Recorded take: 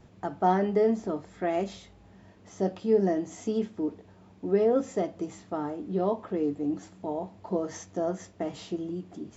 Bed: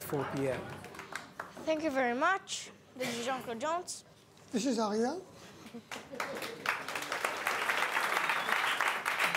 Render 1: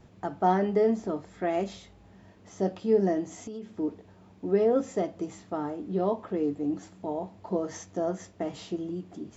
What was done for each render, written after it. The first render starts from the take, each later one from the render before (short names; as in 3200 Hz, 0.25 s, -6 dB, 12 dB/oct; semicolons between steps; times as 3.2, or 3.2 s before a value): 3.33–3.76 compressor 5:1, threshold -36 dBFS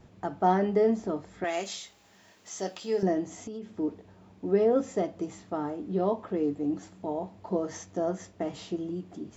1.44–3.03 tilt +4.5 dB/oct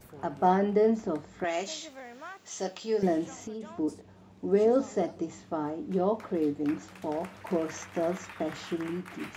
add bed -14.5 dB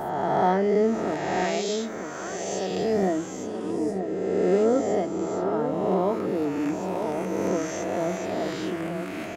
spectral swells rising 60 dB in 2.04 s; outdoor echo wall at 160 m, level -7 dB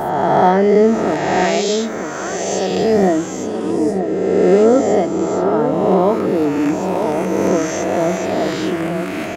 gain +10 dB; limiter -2 dBFS, peak gain reduction 2 dB